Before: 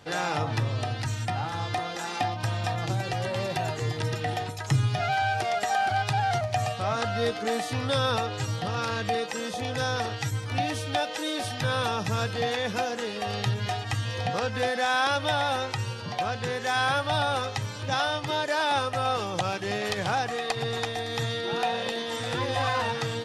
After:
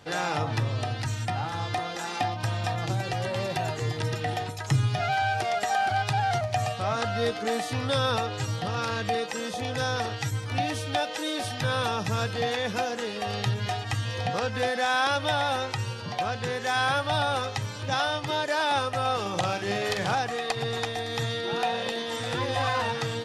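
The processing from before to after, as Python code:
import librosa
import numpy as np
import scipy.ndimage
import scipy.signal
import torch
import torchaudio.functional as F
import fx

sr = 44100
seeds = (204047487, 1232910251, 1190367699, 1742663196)

y = fx.doubler(x, sr, ms=45.0, db=-6.0, at=(19.21, 20.15))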